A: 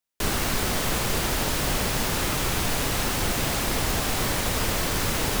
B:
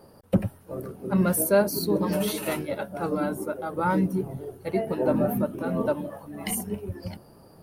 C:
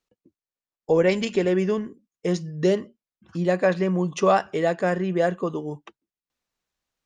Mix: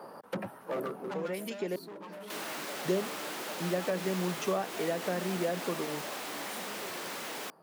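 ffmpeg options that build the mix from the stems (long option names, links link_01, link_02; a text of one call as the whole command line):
ffmpeg -i stem1.wav -i stem2.wav -i stem3.wav -filter_complex "[0:a]bass=frequency=250:gain=-13,treble=frequency=4000:gain=-5,asoftclip=type=tanh:threshold=-31.5dB,adelay=2100,volume=-5dB[link_01];[1:a]equalizer=frequency=1100:width=0.52:gain=15,acompressor=threshold=-23dB:ratio=4,asoftclip=type=hard:threshold=-27dB,volume=-2.5dB,afade=type=out:start_time=0.78:duration=0.55:silence=0.223872,asplit=2[link_02][link_03];[2:a]acompressor=threshold=-25dB:ratio=1.5,adelay=250,volume=0dB,asplit=3[link_04][link_05][link_06];[link_04]atrim=end=1.76,asetpts=PTS-STARTPTS,afade=type=out:start_time=1.756:duration=0.004:curve=hsin[link_07];[link_05]atrim=start=1.76:end=2.85,asetpts=PTS-STARTPTS,volume=0[link_08];[link_06]atrim=start=2.85,asetpts=PTS-STARTPTS,afade=type=in:duration=0.004:curve=hsin[link_09];[link_07][link_08][link_09]concat=n=3:v=0:a=1[link_10];[link_03]apad=whole_len=321982[link_11];[link_10][link_11]sidechaincompress=threshold=-50dB:ratio=8:attack=16:release=1300[link_12];[link_01][link_02][link_12]amix=inputs=3:normalize=0,highpass=frequency=160:width=0.5412,highpass=frequency=160:width=1.3066,acrossover=split=490[link_13][link_14];[link_14]acompressor=threshold=-32dB:ratio=6[link_15];[link_13][link_15]amix=inputs=2:normalize=0" out.wav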